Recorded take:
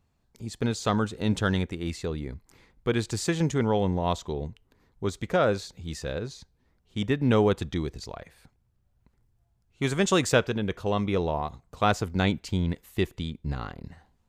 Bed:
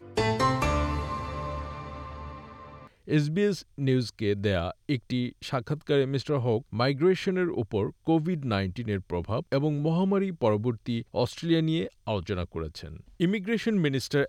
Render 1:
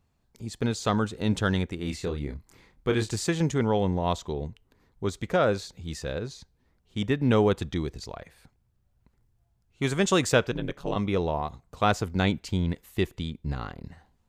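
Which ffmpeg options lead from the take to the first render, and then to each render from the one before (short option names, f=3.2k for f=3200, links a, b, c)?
-filter_complex "[0:a]asettb=1/sr,asplit=3[a][b][c];[a]atrim=end=1.764[d];[b]atrim=start=1.76:end=3.16,asetpts=PTS-STARTPTS,afade=t=in:d=0.004:c=qsin,afade=t=out:st=1.396:d=0.004:c=qsin,asplit=2[e][f];[f]adelay=28,volume=-6dB[g];[e][g]amix=inputs=2:normalize=0,atrim=end_sample=61740[h];[c]atrim=start=3.156[i];[d][h]acrossfade=d=0.004:c1=hsin:c2=qsin[j];[j][i]acrossfade=d=0.004:c1=qsin:c2=hsin,asplit=3[k][l][m];[k]afade=t=out:st=10.51:d=0.02[n];[l]aeval=exprs='val(0)*sin(2*PI*71*n/s)':c=same,afade=t=in:st=10.51:d=0.02,afade=t=out:st=10.95:d=0.02[o];[m]afade=t=in:st=10.95:d=0.02[p];[n][o][p]amix=inputs=3:normalize=0"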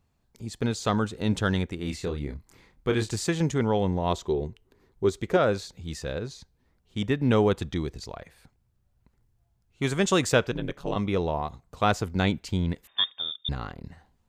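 -filter_complex "[0:a]asettb=1/sr,asplit=3[a][b][c];[a]atrim=end=4.104[d];[b]atrim=start=4.1:end=5.37,asetpts=PTS-STARTPTS,afade=t=in:d=0.004:c=qsin,afade=t=out:st=1.266:d=0.004:c=qsin,equalizer=f=380:t=o:w=0.37:g=9.5[e];[c]atrim=start=5.366[f];[d][e]acrossfade=d=0.004:c1=hsin:c2=qsin[g];[g][f]acrossfade=d=0.004:c1=qsin:c2=hsin,asettb=1/sr,asplit=3[h][i][j];[h]atrim=end=12.874[k];[i]atrim=start=12.87:end=13.49,asetpts=PTS-STARTPTS,afade=t=in:d=0.004:c=qsin,afade=t=out:st=0.616:d=0.004:c=qsin,lowpass=f=3.1k:t=q:w=0.5098,lowpass=f=3.1k:t=q:w=0.6013,lowpass=f=3.1k:t=q:w=0.9,lowpass=f=3.1k:t=q:w=2.563,afreqshift=-3700[l];[j]atrim=start=13.486[m];[k][l]acrossfade=d=0.004:c1=hsin:c2=qsin[n];[n][m]acrossfade=d=0.004:c1=qsin:c2=hsin"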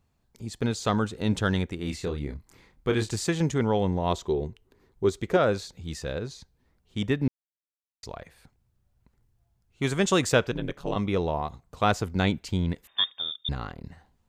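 -filter_complex "[0:a]asplit=3[a][b][c];[a]atrim=end=7.28,asetpts=PTS-STARTPTS,afade=t=out:st=7.276:d=0.004:c=hsin[d];[b]atrim=start=7.28:end=8.03,asetpts=PTS-STARTPTS,volume=0[e];[c]atrim=start=8.03,asetpts=PTS-STARTPTS,afade=t=in:d=0.004:c=hsin[f];[d][e][f]concat=n=3:v=0:a=1"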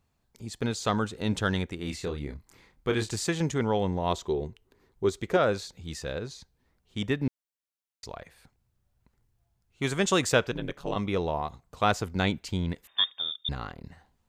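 -af "lowshelf=f=470:g=-3.5"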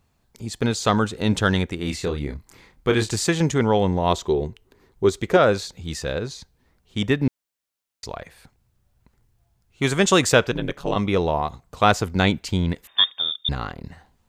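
-af "volume=7.5dB,alimiter=limit=-3dB:level=0:latency=1"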